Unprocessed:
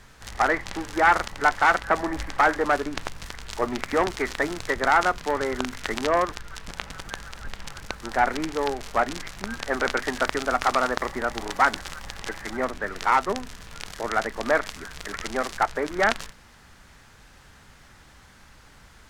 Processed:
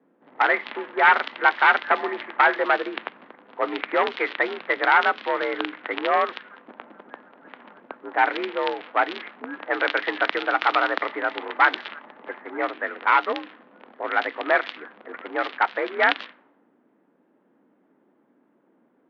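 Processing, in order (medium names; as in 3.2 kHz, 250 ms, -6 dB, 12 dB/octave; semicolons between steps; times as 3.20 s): level-controlled noise filter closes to 330 Hz, open at -20 dBFS; mistuned SSB +54 Hz 190–3500 Hz; treble shelf 2.8 kHz +11.5 dB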